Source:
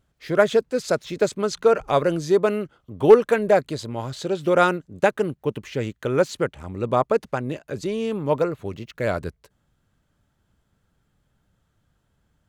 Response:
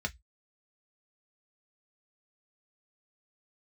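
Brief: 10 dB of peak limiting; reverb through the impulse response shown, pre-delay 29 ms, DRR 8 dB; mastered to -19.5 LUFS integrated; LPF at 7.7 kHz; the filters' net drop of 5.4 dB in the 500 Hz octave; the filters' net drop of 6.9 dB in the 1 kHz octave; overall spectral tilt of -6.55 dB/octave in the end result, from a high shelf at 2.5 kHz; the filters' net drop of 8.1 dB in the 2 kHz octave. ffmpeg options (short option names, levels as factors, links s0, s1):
-filter_complex "[0:a]lowpass=7700,equalizer=f=500:t=o:g=-5,equalizer=f=1000:t=o:g=-5,equalizer=f=2000:t=o:g=-7.5,highshelf=f=2500:g=-3.5,alimiter=limit=0.15:level=0:latency=1,asplit=2[s0][s1];[1:a]atrim=start_sample=2205,adelay=29[s2];[s1][s2]afir=irnorm=-1:irlink=0,volume=0.266[s3];[s0][s3]amix=inputs=2:normalize=0,volume=2.99"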